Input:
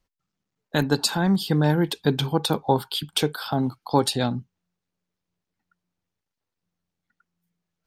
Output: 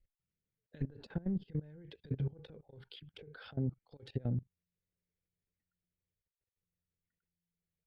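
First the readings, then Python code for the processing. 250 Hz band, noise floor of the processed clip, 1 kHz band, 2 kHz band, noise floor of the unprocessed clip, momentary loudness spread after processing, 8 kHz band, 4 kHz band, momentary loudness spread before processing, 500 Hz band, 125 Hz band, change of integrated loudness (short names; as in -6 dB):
-17.5 dB, under -85 dBFS, -34.5 dB, -26.0 dB, -85 dBFS, 17 LU, under -40 dB, -29.5 dB, 5 LU, -23.0 dB, -12.5 dB, -16.0 dB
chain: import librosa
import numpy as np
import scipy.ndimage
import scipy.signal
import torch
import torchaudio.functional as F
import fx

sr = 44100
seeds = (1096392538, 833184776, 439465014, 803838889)

y = fx.graphic_eq(x, sr, hz=(250, 500, 1000, 2000, 4000, 8000), db=(-6, 12, -5, 10, -3, -10))
y = fx.over_compress(y, sr, threshold_db=-22.0, ratio=-0.5)
y = fx.env_lowpass_down(y, sr, base_hz=910.0, full_db=-18.5)
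y = fx.tone_stack(y, sr, knobs='10-0-1')
y = fx.level_steps(y, sr, step_db=20)
y = y * librosa.db_to_amplitude(7.5)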